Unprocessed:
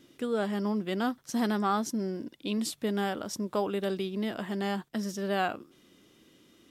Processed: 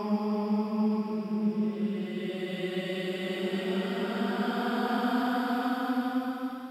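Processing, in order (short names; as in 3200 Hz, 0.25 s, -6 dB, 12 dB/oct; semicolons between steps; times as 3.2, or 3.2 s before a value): rattling part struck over -36 dBFS, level -39 dBFS; Paulstretch 14×, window 0.25 s, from 0.68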